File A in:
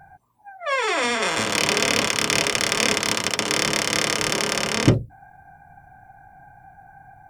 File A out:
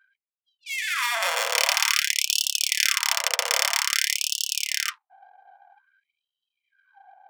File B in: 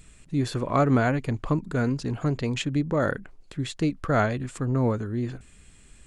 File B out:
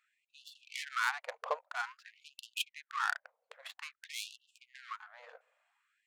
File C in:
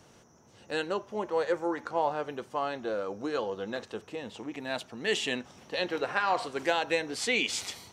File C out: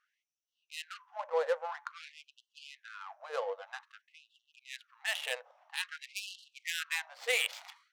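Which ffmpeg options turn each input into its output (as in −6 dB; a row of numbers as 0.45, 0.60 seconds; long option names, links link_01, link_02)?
-af "adynamicsmooth=sensitivity=3:basefreq=1000,crystalizer=i=1:c=0,afftfilt=real='re*gte(b*sr/1024,440*pow(2700/440,0.5+0.5*sin(2*PI*0.51*pts/sr)))':imag='im*gte(b*sr/1024,440*pow(2700/440,0.5+0.5*sin(2*PI*0.51*pts/sr)))':win_size=1024:overlap=0.75,volume=-1.5dB"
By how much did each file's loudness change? −1.5, −12.5, −5.0 LU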